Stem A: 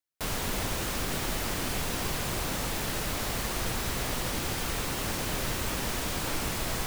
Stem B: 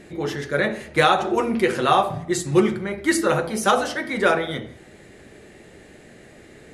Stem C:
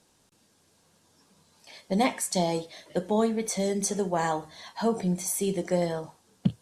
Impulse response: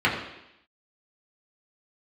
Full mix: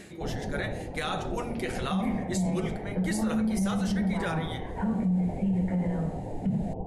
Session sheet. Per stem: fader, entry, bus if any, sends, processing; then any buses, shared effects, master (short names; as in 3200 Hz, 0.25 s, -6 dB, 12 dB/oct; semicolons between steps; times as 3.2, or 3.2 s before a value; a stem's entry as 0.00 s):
0.0 dB, 0.00 s, send -16.5 dB, reverb removal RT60 1.7 s; steep low-pass 840 Hz 72 dB/oct
-1.5 dB, 0.00 s, no send, high shelf 2500 Hz +9 dB; auto duck -12 dB, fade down 0.20 s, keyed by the third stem
-17.5 dB, 0.00 s, send -6.5 dB, steep low-pass 2800 Hz; resonant low shelf 270 Hz +8.5 dB, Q 3; three-band squash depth 40%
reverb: on, RT60 0.85 s, pre-delay 3 ms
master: limiter -20.5 dBFS, peak gain reduction 11 dB